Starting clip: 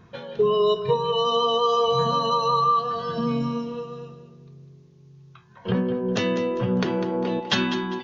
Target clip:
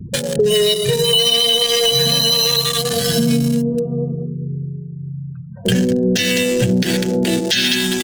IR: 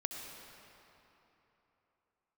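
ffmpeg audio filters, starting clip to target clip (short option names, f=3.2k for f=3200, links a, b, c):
-filter_complex "[1:a]atrim=start_sample=2205,atrim=end_sample=6174[a];[0:a][a]afir=irnorm=-1:irlink=0,asplit=2[b][c];[c]asoftclip=type=hard:threshold=-19dB,volume=-3dB[d];[b][d]amix=inputs=2:normalize=0,afftfilt=real='re*gte(hypot(re,im),0.0112)':imag='im*gte(hypot(re,im),0.0112)':win_size=1024:overlap=0.75,firequalizer=gain_entry='entry(750,0);entry(1100,-19);entry(1600,13)':delay=0.05:min_phase=1,acrossover=split=150|720[e][f][g];[g]aeval=exprs='sgn(val(0))*max(abs(val(0))-0.0376,0)':c=same[h];[e][f][h]amix=inputs=3:normalize=0,bass=f=250:g=5,treble=f=4k:g=11,acompressor=threshold=-31dB:ratio=3,alimiter=level_in=19dB:limit=-1dB:release=50:level=0:latency=1,volume=-4.5dB"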